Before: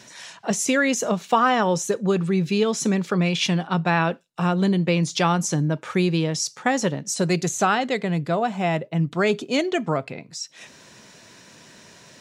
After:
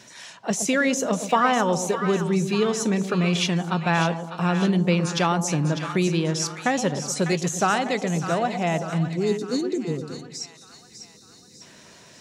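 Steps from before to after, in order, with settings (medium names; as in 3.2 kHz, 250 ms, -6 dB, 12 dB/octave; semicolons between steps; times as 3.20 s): time-frequency box 9.04–11.62 s, 520–3600 Hz -26 dB; two-band feedback delay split 930 Hz, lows 119 ms, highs 599 ms, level -9 dB; trim -1.5 dB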